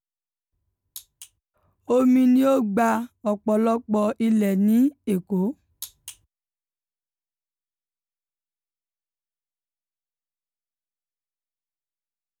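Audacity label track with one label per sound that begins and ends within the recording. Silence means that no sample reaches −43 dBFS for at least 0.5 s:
0.960000	1.260000	sound
1.880000	6.130000	sound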